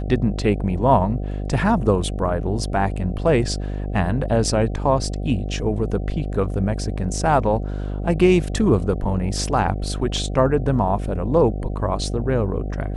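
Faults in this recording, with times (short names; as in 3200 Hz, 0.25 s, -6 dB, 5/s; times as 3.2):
buzz 50 Hz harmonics 15 -26 dBFS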